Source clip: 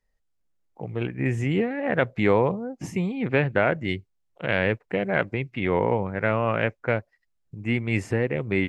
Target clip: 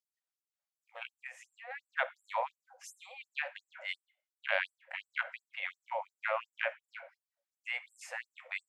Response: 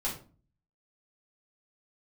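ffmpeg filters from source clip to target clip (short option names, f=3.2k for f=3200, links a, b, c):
-filter_complex "[0:a]asplit=2[a][b];[1:a]atrim=start_sample=2205,asetrate=31752,aresample=44100[c];[b][c]afir=irnorm=-1:irlink=0,volume=-18dB[d];[a][d]amix=inputs=2:normalize=0,asplit=3[e][f][g];[e]afade=t=out:st=1.12:d=0.02[h];[f]acompressor=threshold=-26dB:ratio=6,afade=t=in:st=1.12:d=0.02,afade=t=out:st=1.69:d=0.02[i];[g]afade=t=in:st=1.69:d=0.02[j];[h][i][j]amix=inputs=3:normalize=0,afftfilt=real='re*gte(b*sr/1024,480*pow(7600/480,0.5+0.5*sin(2*PI*2.8*pts/sr)))':imag='im*gte(b*sr/1024,480*pow(7600/480,0.5+0.5*sin(2*PI*2.8*pts/sr)))':win_size=1024:overlap=0.75,volume=-6dB"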